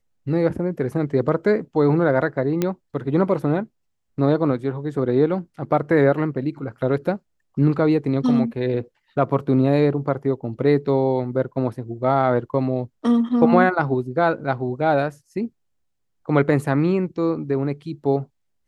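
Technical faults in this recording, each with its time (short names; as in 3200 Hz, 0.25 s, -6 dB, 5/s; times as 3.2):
2.62 pop -8 dBFS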